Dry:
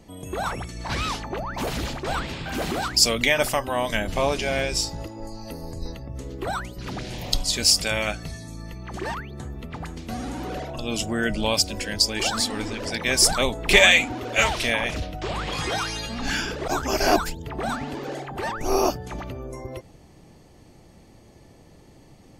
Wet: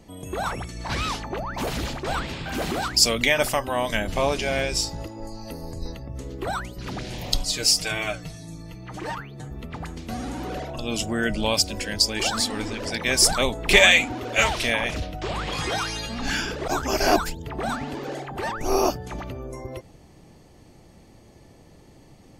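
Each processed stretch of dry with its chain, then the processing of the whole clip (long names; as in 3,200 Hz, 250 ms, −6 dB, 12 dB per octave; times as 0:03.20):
0:07.45–0:09.51: comb filter 6.5 ms, depth 98% + flanger 1.9 Hz, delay 5.7 ms, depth 4.5 ms, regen +78%
whole clip: no processing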